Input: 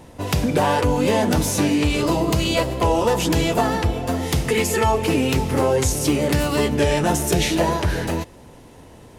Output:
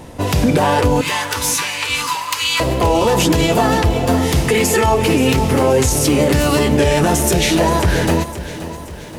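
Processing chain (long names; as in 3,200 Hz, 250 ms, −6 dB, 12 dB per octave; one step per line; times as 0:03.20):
0:01.01–0:02.60: elliptic high-pass filter 950 Hz, stop band 40 dB
brickwall limiter −13.5 dBFS, peak gain reduction 7 dB
feedback echo at a low word length 527 ms, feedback 55%, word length 8 bits, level −13.5 dB
level +8 dB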